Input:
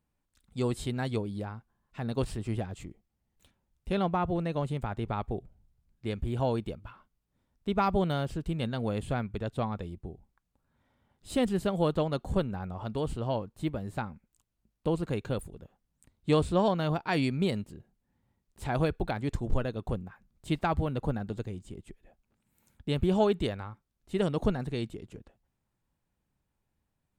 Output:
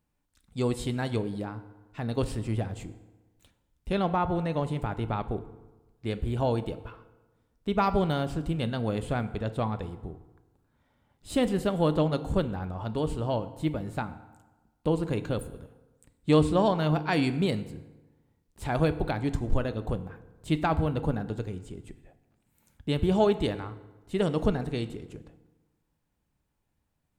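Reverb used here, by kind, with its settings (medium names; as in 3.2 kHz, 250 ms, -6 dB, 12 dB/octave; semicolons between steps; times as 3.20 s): FDN reverb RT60 1.2 s, low-frequency decay 1×, high-frequency decay 0.65×, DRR 11 dB; trim +2 dB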